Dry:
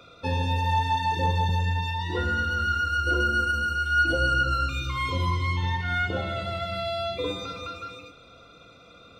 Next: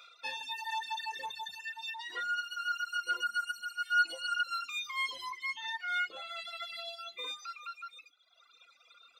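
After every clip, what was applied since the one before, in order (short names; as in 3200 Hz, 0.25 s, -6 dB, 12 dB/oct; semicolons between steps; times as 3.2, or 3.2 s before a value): reverb removal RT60 1.5 s; HPF 1500 Hz 12 dB/oct; reverb removal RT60 1.7 s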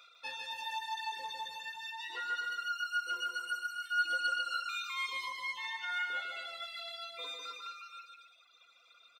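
bouncing-ball echo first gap 0.15 s, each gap 0.75×, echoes 5; gain -3.5 dB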